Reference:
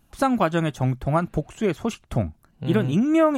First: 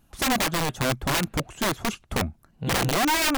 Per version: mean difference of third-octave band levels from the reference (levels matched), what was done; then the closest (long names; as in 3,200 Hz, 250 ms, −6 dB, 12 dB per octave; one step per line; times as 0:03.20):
12.0 dB: wrap-around overflow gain 18 dB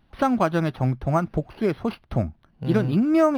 2.5 dB: linearly interpolated sample-rate reduction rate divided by 6×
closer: second